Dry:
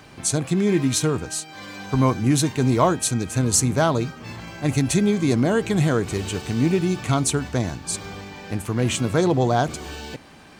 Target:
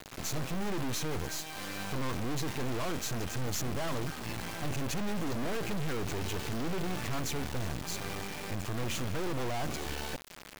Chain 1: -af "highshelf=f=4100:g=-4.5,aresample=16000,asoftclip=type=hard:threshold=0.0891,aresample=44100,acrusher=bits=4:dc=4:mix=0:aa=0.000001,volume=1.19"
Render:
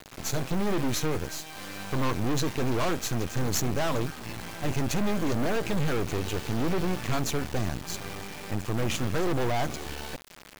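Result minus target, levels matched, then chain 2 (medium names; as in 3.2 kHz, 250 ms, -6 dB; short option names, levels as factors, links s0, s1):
hard clipper: distortion -5 dB
-af "highshelf=f=4100:g=-4.5,aresample=16000,asoftclip=type=hard:threshold=0.0316,aresample=44100,acrusher=bits=4:dc=4:mix=0:aa=0.000001,volume=1.19"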